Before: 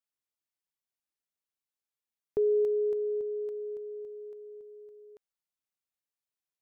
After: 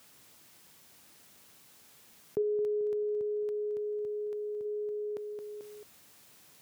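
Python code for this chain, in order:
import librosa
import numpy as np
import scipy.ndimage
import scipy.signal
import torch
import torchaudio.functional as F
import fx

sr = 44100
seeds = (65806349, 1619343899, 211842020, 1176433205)

y = fx.peak_eq(x, sr, hz=400.0, db=-8.0, octaves=2.2, at=(2.41, 4.64), fade=0.02)
y = scipy.signal.sosfilt(scipy.signal.butter(2, 70.0, 'highpass', fs=sr, output='sos'), y)
y = fx.peak_eq(y, sr, hz=170.0, db=6.5, octaves=2.4)
y = fx.echo_feedback(y, sr, ms=220, feedback_pct=34, wet_db=-15)
y = fx.env_flatten(y, sr, amount_pct=70)
y = F.gain(torch.from_numpy(y), -6.0).numpy()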